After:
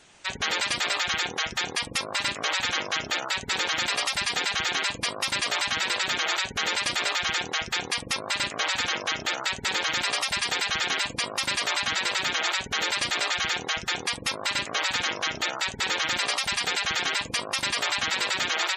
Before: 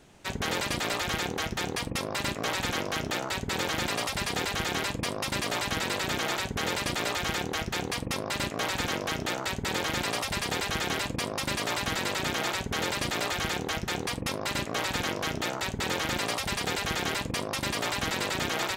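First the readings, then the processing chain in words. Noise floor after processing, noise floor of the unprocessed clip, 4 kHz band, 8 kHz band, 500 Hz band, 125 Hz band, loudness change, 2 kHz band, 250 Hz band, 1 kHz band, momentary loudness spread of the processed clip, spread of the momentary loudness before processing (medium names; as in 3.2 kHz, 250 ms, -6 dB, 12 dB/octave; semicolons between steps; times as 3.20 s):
-39 dBFS, -39 dBFS, +6.0 dB, +4.0 dB, -3.0 dB, -8.5 dB, +4.0 dB, +5.0 dB, -7.0 dB, +1.5 dB, 3 LU, 2 LU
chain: tilt shelf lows -7.5 dB, about 720 Hz; spectral gate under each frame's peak -15 dB strong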